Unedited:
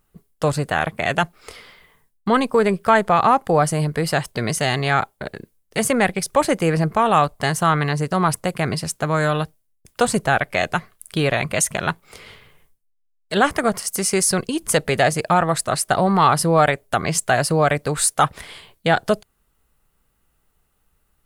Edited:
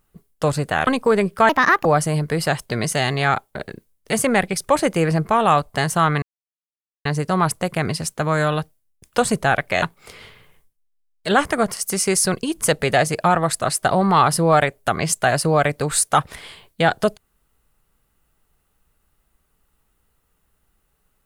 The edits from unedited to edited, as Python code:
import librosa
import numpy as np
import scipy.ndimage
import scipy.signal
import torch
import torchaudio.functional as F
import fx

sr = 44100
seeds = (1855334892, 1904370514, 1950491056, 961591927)

y = fx.edit(x, sr, fx.cut(start_s=0.87, length_s=1.48),
    fx.speed_span(start_s=2.97, length_s=0.54, speed=1.49),
    fx.insert_silence(at_s=7.88, length_s=0.83),
    fx.cut(start_s=10.65, length_s=1.23), tone=tone)